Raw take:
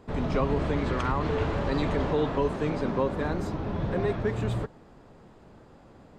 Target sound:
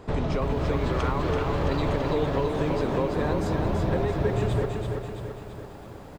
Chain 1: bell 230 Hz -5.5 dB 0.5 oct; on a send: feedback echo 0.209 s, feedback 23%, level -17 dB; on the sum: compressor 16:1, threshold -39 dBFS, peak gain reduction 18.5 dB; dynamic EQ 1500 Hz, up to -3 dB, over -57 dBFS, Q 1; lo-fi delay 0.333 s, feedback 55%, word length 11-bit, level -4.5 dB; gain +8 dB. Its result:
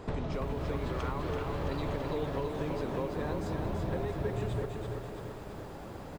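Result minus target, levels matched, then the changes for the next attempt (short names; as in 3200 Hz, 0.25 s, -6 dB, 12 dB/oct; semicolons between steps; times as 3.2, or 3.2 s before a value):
compressor: peak gain reduction +8.5 dB
change: compressor 16:1, threshold -30 dBFS, peak gain reduction 10 dB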